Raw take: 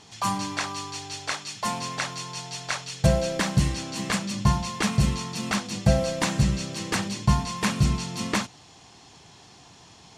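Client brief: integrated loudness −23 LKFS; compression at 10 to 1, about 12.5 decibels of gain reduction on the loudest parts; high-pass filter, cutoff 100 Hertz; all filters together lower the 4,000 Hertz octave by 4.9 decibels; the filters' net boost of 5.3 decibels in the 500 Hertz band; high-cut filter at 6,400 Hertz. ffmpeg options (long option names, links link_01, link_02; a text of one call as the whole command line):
ffmpeg -i in.wav -af "highpass=100,lowpass=6400,equalizer=frequency=500:width_type=o:gain=6.5,equalizer=frequency=4000:width_type=o:gain=-5.5,acompressor=threshold=-28dB:ratio=10,volume=10.5dB" out.wav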